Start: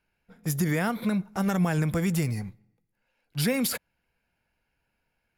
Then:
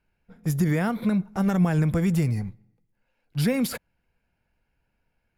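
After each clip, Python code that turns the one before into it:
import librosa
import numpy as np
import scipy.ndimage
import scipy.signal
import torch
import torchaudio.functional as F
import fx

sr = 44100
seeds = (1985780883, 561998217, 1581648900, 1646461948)

y = fx.tilt_eq(x, sr, slope=-1.5)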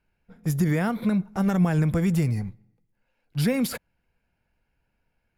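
y = x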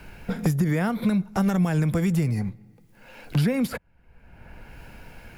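y = fx.band_squash(x, sr, depth_pct=100)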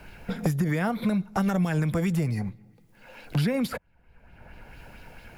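y = fx.bell_lfo(x, sr, hz=4.5, low_hz=560.0, high_hz=4200.0, db=7)
y = F.gain(torch.from_numpy(y), -3.0).numpy()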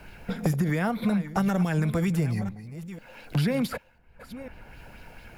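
y = fx.reverse_delay(x, sr, ms=498, wet_db=-13.5)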